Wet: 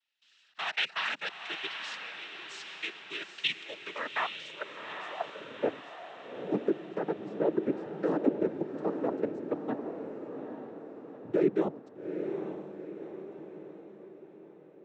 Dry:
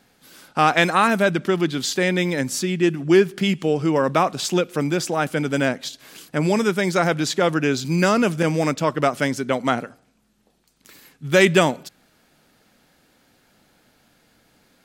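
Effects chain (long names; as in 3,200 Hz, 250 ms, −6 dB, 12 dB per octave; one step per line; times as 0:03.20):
mains-hum notches 60/120/180/240/300/360/420/480 Hz
output level in coarse steps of 19 dB
cochlear-implant simulation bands 12
band-pass filter sweep 3,000 Hz → 340 Hz, 0:03.74–0:05.92
feedback delay with all-pass diffusion 835 ms, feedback 50%, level −7 dB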